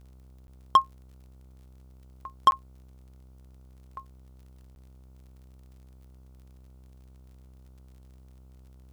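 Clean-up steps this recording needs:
clipped peaks rebuilt −11 dBFS
click removal
hum removal 64.5 Hz, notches 23
repair the gap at 0:00.47/0:02.51/0:04.75, 11 ms

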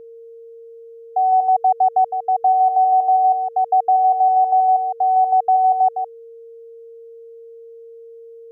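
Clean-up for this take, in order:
notch filter 460 Hz, Q 30
echo removal 160 ms −5.5 dB

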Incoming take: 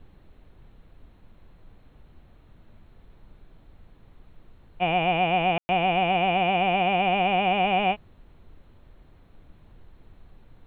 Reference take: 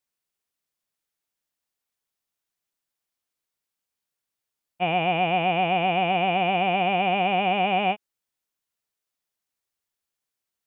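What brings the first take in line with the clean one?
ambience match 0:05.58–0:05.69
noise reduction from a noise print 30 dB

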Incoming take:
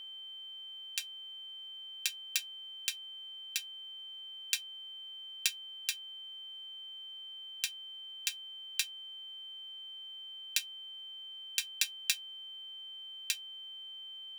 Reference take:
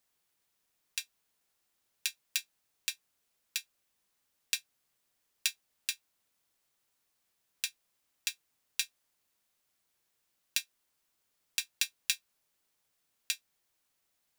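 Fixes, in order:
hum removal 404.7 Hz, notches 8
notch filter 3,100 Hz, Q 30

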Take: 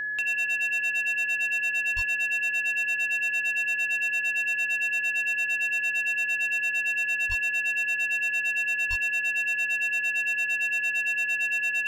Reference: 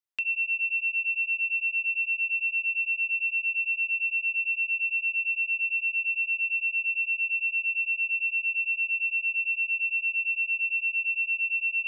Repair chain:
clipped peaks rebuilt −22 dBFS
hum removal 130.8 Hz, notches 5
notch filter 1,700 Hz, Q 30
high-pass at the plosives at 0:01.95/0:07.28/0:08.89

